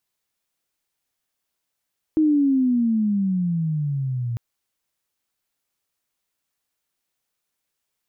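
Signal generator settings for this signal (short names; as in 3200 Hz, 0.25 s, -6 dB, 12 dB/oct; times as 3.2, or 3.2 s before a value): gliding synth tone sine, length 2.20 s, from 317 Hz, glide -17.5 st, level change -9 dB, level -14 dB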